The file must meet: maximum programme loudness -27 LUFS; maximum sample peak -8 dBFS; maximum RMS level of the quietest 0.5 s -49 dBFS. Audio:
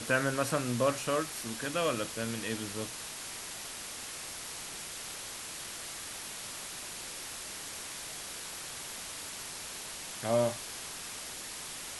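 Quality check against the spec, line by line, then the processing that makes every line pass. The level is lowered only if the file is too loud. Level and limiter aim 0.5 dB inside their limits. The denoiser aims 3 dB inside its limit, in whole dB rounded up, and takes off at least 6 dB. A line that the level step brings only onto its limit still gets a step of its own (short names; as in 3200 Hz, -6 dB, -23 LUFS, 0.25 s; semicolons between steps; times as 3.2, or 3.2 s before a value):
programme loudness -36.0 LUFS: OK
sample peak -15.5 dBFS: OK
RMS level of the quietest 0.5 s -42 dBFS: fail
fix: denoiser 10 dB, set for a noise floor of -42 dBFS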